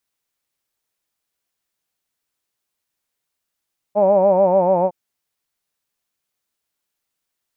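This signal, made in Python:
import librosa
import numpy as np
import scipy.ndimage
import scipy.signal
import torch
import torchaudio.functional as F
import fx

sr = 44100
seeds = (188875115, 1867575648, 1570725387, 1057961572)

y = fx.formant_vowel(sr, seeds[0], length_s=0.96, hz=200.0, glide_st=-2.0, vibrato_hz=6.9, vibrato_st=0.9, f1_hz=590.0, f2_hz=890.0, f3_hz=2400.0)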